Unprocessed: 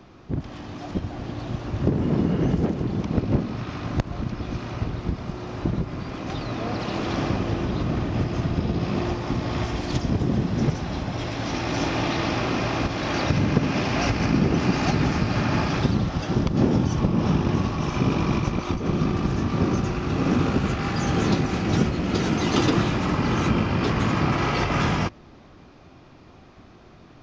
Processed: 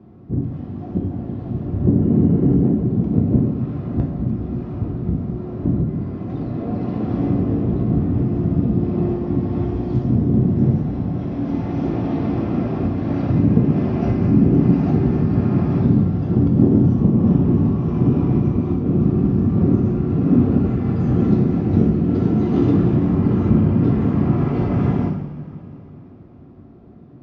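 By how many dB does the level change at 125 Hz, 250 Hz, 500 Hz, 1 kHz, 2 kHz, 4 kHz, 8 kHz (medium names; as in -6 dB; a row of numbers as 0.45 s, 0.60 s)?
+6.5 dB, +7.5 dB, +3.0 dB, -5.5 dB, under -10 dB, under -15 dB, no reading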